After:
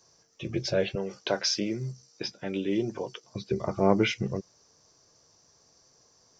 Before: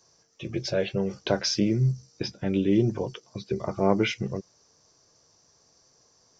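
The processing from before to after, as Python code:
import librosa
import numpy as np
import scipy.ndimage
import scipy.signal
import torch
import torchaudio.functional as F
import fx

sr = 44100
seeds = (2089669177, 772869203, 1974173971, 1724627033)

y = fx.highpass(x, sr, hz=500.0, slope=6, at=(0.95, 3.24))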